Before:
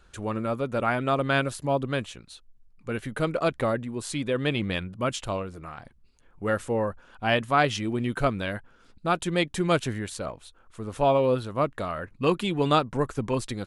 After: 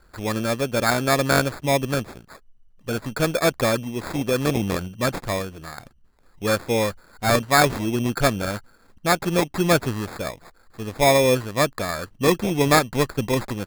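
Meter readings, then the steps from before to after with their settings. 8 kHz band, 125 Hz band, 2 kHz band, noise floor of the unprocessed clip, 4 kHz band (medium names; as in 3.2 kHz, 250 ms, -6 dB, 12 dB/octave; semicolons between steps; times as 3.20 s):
+11.5 dB, +4.5 dB, +6.0 dB, -58 dBFS, +6.5 dB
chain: in parallel at -7 dB: crossover distortion -37 dBFS; on the sum: sample-and-hold 15×; trim +2 dB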